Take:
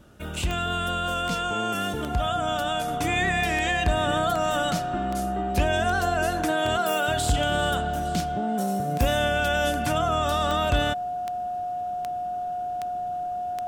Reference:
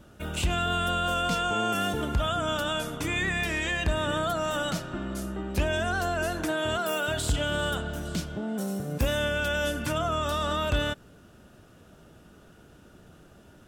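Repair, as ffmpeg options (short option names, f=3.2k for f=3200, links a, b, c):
-af "adeclick=t=4,bandreject=f=720:w=30,asetnsamples=n=441:p=0,asendcmd='2.88 volume volume -3dB',volume=0dB"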